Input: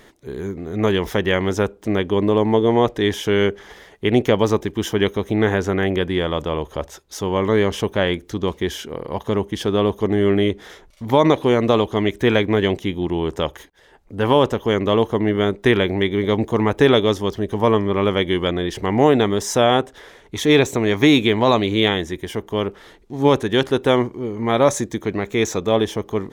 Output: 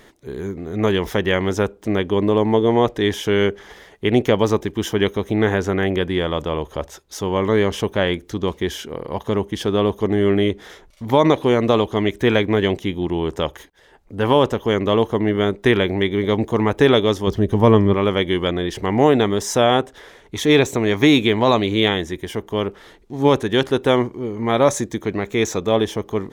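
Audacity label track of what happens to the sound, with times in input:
17.270000	17.940000	low-shelf EQ 280 Hz +9.5 dB

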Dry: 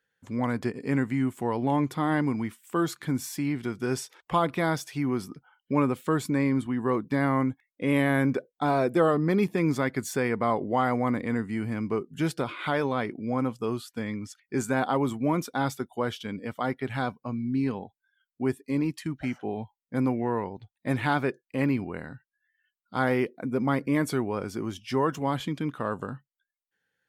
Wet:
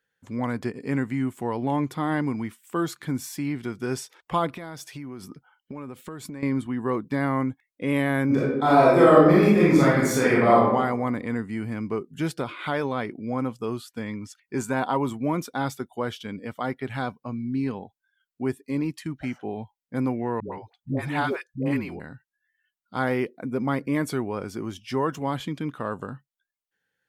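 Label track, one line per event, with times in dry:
4.490000	6.430000	downward compressor 10 to 1, threshold −33 dBFS
8.260000	10.630000	thrown reverb, RT60 0.99 s, DRR −7.5 dB
14.020000	15.100000	hollow resonant body resonances 970/2,700 Hz, height 9 dB
20.400000	22.000000	all-pass dispersion highs, late by 124 ms, half as late at 460 Hz

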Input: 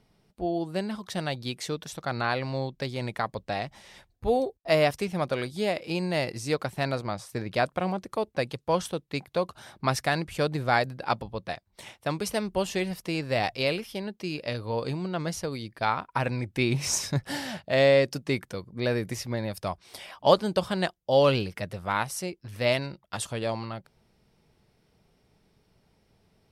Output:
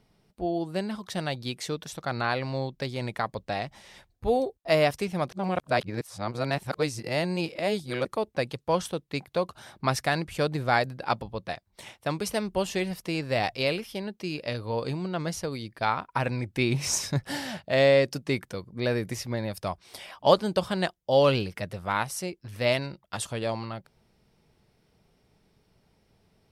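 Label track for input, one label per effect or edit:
5.310000	8.050000	reverse

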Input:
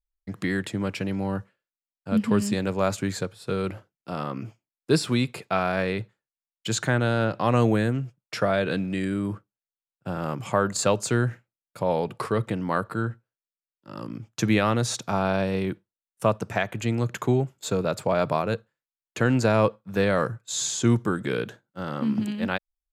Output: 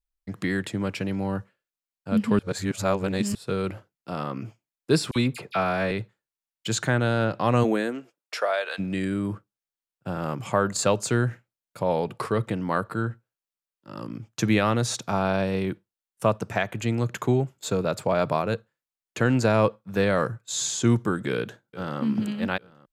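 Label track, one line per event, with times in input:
2.390000	3.350000	reverse
5.110000	5.910000	all-pass dispersion lows, late by 48 ms, half as late at 2,000 Hz
7.630000	8.780000	high-pass filter 190 Hz → 700 Hz 24 dB per octave
21.310000	22.010000	delay throw 420 ms, feedback 50%, level −17.5 dB

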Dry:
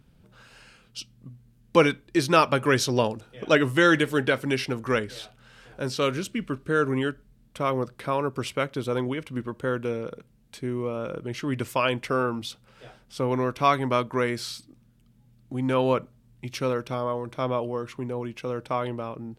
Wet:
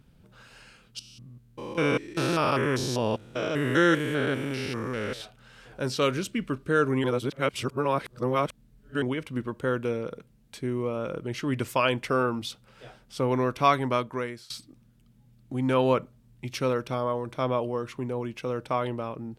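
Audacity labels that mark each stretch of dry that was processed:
0.990000	5.210000	spectrum averaged block by block every 200 ms
7.040000	9.020000	reverse
13.490000	14.500000	fade out equal-power, to −22.5 dB

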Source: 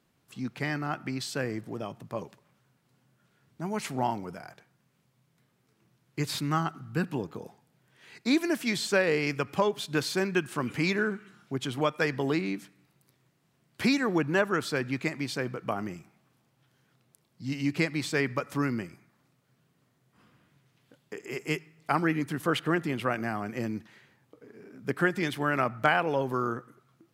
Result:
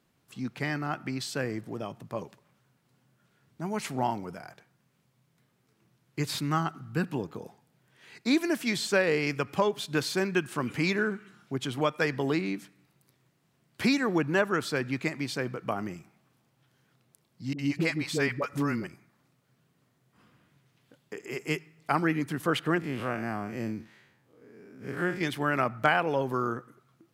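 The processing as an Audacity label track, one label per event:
17.530000	18.870000	all-pass dispersion highs, late by 58 ms, half as late at 520 Hz
22.800000	25.210000	spectrum smeared in time width 92 ms

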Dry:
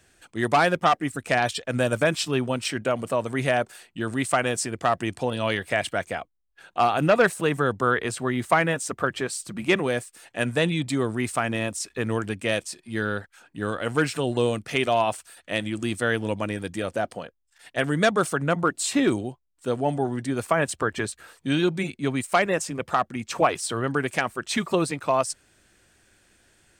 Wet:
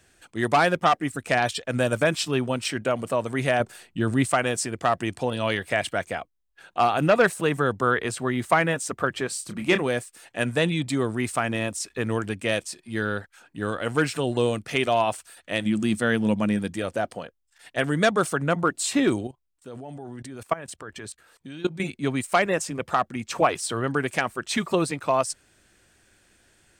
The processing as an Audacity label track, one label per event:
3.600000	4.290000	low-shelf EQ 300 Hz +8.5 dB
9.280000	9.820000	double-tracking delay 28 ms −8.5 dB
15.650000	16.720000	parametric band 210 Hz +11.5 dB 0.29 octaves
19.270000	21.800000	output level in coarse steps of 19 dB

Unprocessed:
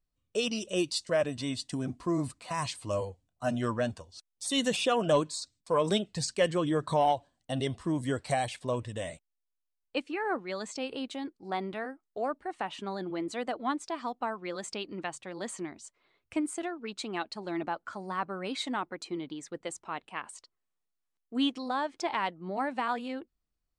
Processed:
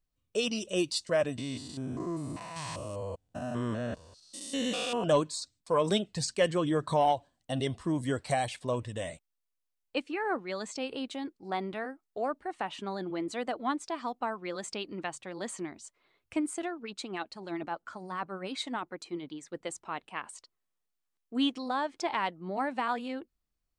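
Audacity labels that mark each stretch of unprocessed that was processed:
1.380000	5.040000	spectrum averaged block by block every 200 ms
16.830000	19.530000	two-band tremolo in antiphase 9.9 Hz, depth 50%, crossover 1,500 Hz

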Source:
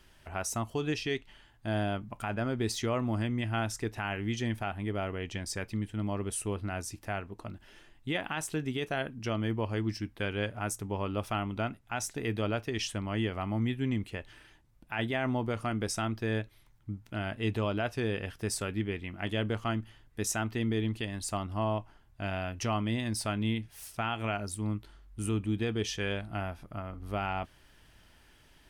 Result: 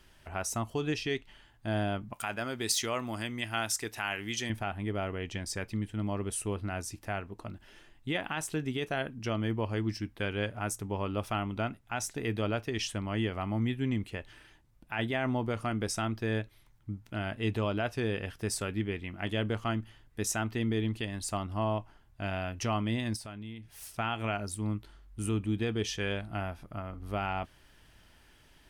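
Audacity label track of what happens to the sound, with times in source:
2.130000	4.500000	spectral tilt +3 dB per octave
23.160000	23.810000	downward compressor 2.5 to 1, threshold −45 dBFS

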